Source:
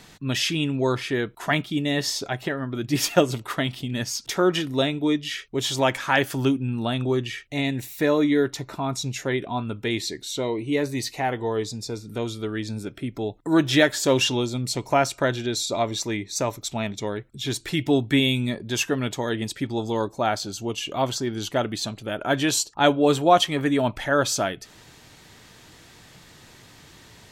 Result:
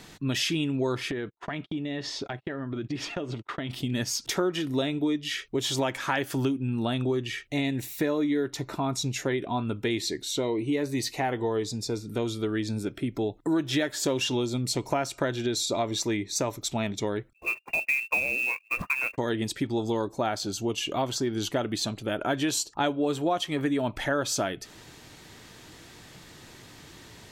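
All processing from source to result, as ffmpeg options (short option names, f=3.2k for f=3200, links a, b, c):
-filter_complex "[0:a]asettb=1/sr,asplit=3[a][b][c];[a]atrim=end=1.114[d];[b]atrim=start=1.11:end=3.7,asetpts=PTS-STARTPTS,afade=t=in:d=0.004:c=qsin,afade=t=out:st=2.586:d=0.004:c=qsin,agate=range=-41dB:threshold=-36dB:ratio=16:release=100:detection=peak,lowpass=3.7k,acompressor=threshold=-30dB:ratio=8:attack=3.2:release=140:knee=1:detection=peak[e];[c]atrim=start=3.696[f];[d][e]acrossfade=d=0.004:c1=hsin:c2=qsin[g];[g][f]acrossfade=d=0.004:c1=qsin:c2=hsin,asettb=1/sr,asplit=3[h][i][j];[h]atrim=end=17.334[k];[i]atrim=start=17.33:end=19.18,asetpts=PTS-STARTPTS,afade=t=in:d=0.004:c=qsin,afade=t=out:st=1.846:d=0.004:c=qsin,agate=range=-27dB:threshold=-33dB:ratio=16:release=100:detection=peak,lowpass=f=2.4k:t=q:w=0.5098,lowpass=f=2.4k:t=q:w=0.6013,lowpass=f=2.4k:t=q:w=0.9,lowpass=f=2.4k:t=q:w=2.563,afreqshift=-2800,acrusher=bits=4:mode=log:mix=0:aa=0.000001[l];[j]atrim=start=19.176[m];[k][l]acrossfade=d=0.004:c1=hsin:c2=qsin[n];[n][m]acrossfade=d=0.004:c1=qsin:c2=hsin,equalizer=f=330:t=o:w=0.77:g=3.5,acompressor=threshold=-24dB:ratio=5"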